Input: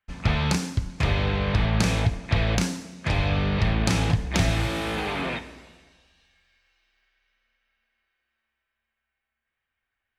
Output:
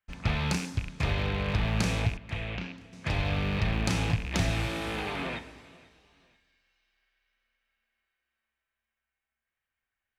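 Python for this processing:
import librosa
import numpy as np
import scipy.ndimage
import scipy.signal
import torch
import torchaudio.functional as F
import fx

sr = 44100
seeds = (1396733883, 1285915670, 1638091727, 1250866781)

p1 = fx.rattle_buzz(x, sr, strikes_db=-30.0, level_db=-21.0)
p2 = fx.ladder_lowpass(p1, sr, hz=3700.0, resonance_pct=35, at=(2.17, 2.93))
p3 = p2 + fx.echo_feedback(p2, sr, ms=488, feedback_pct=35, wet_db=-23.0, dry=0)
y = F.gain(torch.from_numpy(p3), -5.5).numpy()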